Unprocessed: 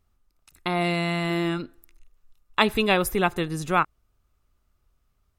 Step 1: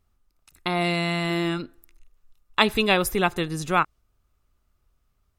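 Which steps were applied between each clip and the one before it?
dynamic equaliser 5,100 Hz, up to +4 dB, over −42 dBFS, Q 0.71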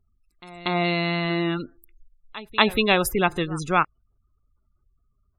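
echo ahead of the sound 237 ms −19 dB
gate on every frequency bin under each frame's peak −25 dB strong
level +1 dB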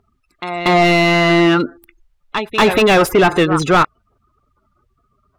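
mid-hump overdrive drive 31 dB, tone 1,400 Hz, clips at −1 dBFS

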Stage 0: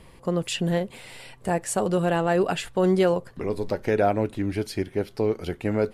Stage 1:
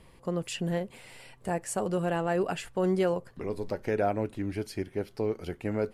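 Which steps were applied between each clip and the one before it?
dynamic equaliser 3,700 Hz, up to −6 dB, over −55 dBFS, Q 4.1
level −6 dB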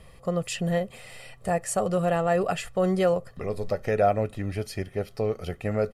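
comb filter 1.6 ms, depth 57%
level +3.5 dB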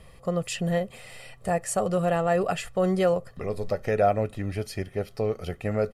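no processing that can be heard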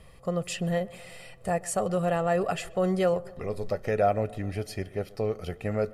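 tape delay 129 ms, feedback 75%, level −20 dB, low-pass 1,600 Hz
level −2 dB

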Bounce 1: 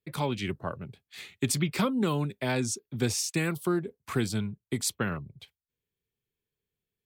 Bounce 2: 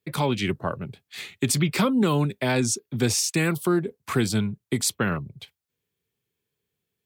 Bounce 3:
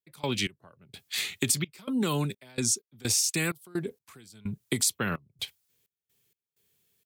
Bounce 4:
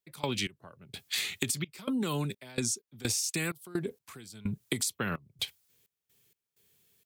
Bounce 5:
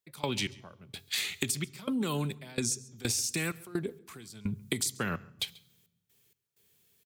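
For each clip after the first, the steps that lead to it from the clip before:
high-pass filter 83 Hz; in parallel at +2 dB: brickwall limiter −21.5 dBFS, peak gain reduction 7.5 dB
high-shelf EQ 3,000 Hz +11.5 dB; downward compressor 3 to 1, threshold −30 dBFS, peak gain reduction 14.5 dB; gate pattern ".x..xxx.xx.x.xx" 64 BPM −24 dB; level +2.5 dB
downward compressor 6 to 1, threshold −32 dBFS, peak gain reduction 11.5 dB; level +3.5 dB
single-tap delay 137 ms −23.5 dB; on a send at −22 dB: convolution reverb RT60 1.1 s, pre-delay 3 ms

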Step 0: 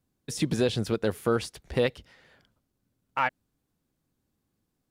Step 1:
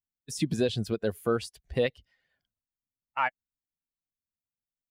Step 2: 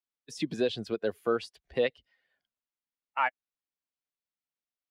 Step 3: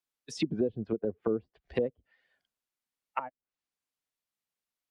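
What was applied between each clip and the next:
spectral dynamics exaggerated over time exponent 1.5
three-way crossover with the lows and the highs turned down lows −14 dB, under 240 Hz, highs −14 dB, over 5,200 Hz
treble cut that deepens with the level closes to 360 Hz, closed at −28.5 dBFS; wow of a warped record 78 rpm, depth 100 cents; level +3 dB

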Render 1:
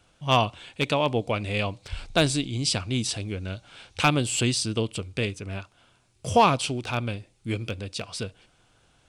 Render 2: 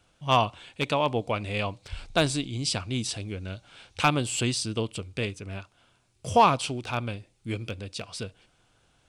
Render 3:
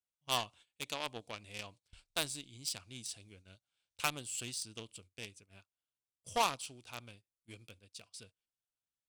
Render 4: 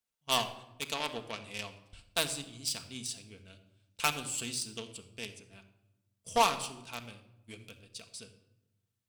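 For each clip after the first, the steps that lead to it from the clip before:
dynamic equaliser 1,000 Hz, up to +4 dB, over −36 dBFS, Q 1.2; level −3 dB
harmonic generator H 3 −15 dB, 6 −21 dB, 7 −32 dB, 8 −25 dB, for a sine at −8 dBFS; first-order pre-emphasis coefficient 0.8; noise gate −59 dBFS, range −18 dB; level +1.5 dB
convolution reverb RT60 0.90 s, pre-delay 4 ms, DRR 6 dB; level +4 dB

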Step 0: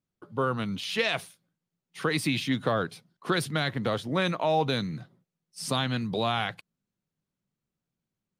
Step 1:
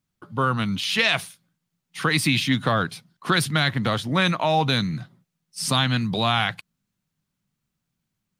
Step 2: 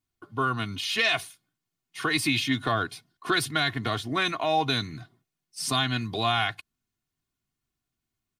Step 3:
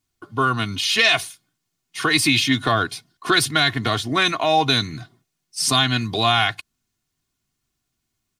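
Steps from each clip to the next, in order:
parametric band 450 Hz −9 dB 1.3 octaves; level +8.5 dB
comb filter 2.8 ms, depth 73%; level −5.5 dB
parametric band 6,300 Hz +4.5 dB 1.5 octaves; level +6.5 dB

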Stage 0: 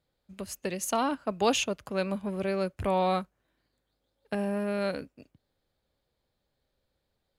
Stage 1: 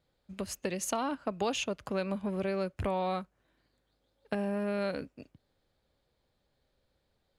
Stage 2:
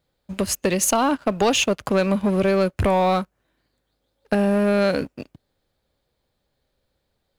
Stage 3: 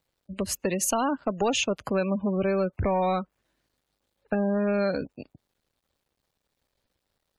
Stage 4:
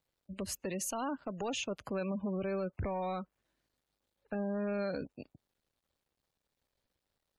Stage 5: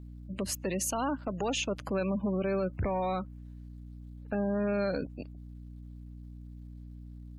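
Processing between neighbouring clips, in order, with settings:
high-shelf EQ 11,000 Hz −11 dB; downward compressor 3 to 1, threshold −34 dBFS, peak gain reduction 10.5 dB; level +3 dB
high-shelf EQ 10,000 Hz +6 dB; leveller curve on the samples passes 2; level +6.5 dB
log-companded quantiser 6 bits; gate on every frequency bin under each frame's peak −25 dB strong; level −6 dB
brickwall limiter −22.5 dBFS, peak gain reduction 7 dB; level −6.5 dB
mains hum 60 Hz, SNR 11 dB; level +5 dB

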